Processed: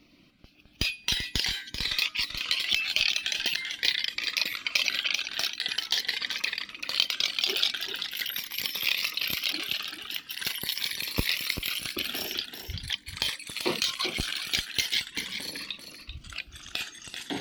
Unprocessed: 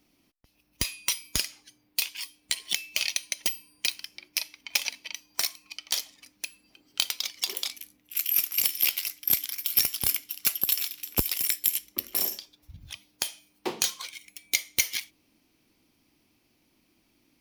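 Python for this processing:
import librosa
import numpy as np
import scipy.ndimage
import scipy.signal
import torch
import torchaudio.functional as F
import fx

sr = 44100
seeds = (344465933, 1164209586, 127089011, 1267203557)

p1 = fx.over_compress(x, sr, threshold_db=-34.0, ratio=-1.0)
p2 = x + (p1 * 10.0 ** (1.5 / 20.0))
p3 = fx.dereverb_blind(p2, sr, rt60_s=0.59)
p4 = fx.gate_flip(p3, sr, shuts_db=-18.0, range_db=-27, at=(9.5, 10.11))
p5 = fx.echo_pitch(p4, sr, ms=97, semitones=-4, count=3, db_per_echo=-6.0)
p6 = fx.high_shelf_res(p5, sr, hz=5700.0, db=-14.0, q=1.5)
p7 = p6 + fx.echo_single(p6, sr, ms=388, db=-8.5, dry=0)
y = fx.notch_cascade(p7, sr, direction='rising', hz=0.44)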